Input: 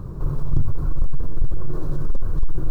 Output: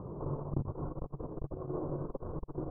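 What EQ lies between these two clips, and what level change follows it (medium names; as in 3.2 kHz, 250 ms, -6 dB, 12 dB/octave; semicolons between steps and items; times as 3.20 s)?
band-pass filter 770 Hz, Q 0.71; low-pass 1 kHz 24 dB/octave; +2.0 dB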